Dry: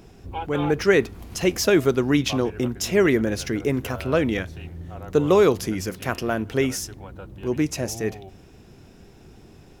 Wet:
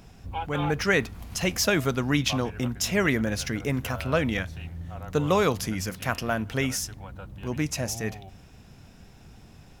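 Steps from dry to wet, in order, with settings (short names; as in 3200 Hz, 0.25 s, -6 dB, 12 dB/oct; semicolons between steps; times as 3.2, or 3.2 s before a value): bell 370 Hz -11 dB 0.77 oct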